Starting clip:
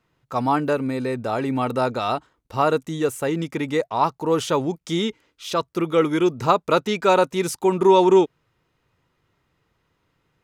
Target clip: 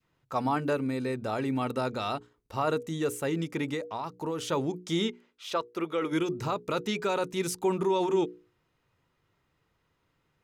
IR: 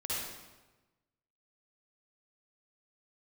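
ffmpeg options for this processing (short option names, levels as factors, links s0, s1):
-filter_complex "[0:a]alimiter=limit=0.224:level=0:latency=1:release=15,asplit=3[s0][s1][s2];[s0]afade=t=out:st=5.07:d=0.02[s3];[s1]bass=f=250:g=-12,treble=f=4000:g=-6,afade=t=in:st=5.07:d=0.02,afade=t=out:st=6.11:d=0.02[s4];[s2]afade=t=in:st=6.11:d=0.02[s5];[s3][s4][s5]amix=inputs=3:normalize=0,bandreject=f=60:t=h:w=6,bandreject=f=120:t=h:w=6,bandreject=f=180:t=h:w=6,bandreject=f=240:t=h:w=6,bandreject=f=300:t=h:w=6,bandreject=f=360:t=h:w=6,bandreject=f=420:t=h:w=6,bandreject=f=480:t=h:w=6,asettb=1/sr,asplit=3[s6][s7][s8];[s6]atrim=end=3.734[s9];[s7]atrim=start=3.73:end=4.52,asetpts=PTS-STARTPTS,afade=t=in:d=0.004:c=qsin,afade=t=out:st=0.786:d=0.004:c=qsin,acompressor=threshold=0.0631:ratio=6[s10];[s8]atrim=start=4.516[s11];[s9][s10]acrossfade=d=0.004:c1=hsin:c2=qsin[s12];[s12][s11]acrossfade=d=0.004:c1=qsin:c2=hsin,adynamicequalizer=threshold=0.0178:dfrequency=800:dqfactor=0.75:tfrequency=800:tqfactor=0.75:attack=5:release=100:ratio=0.375:range=2.5:mode=cutabove:tftype=bell,volume=0.596"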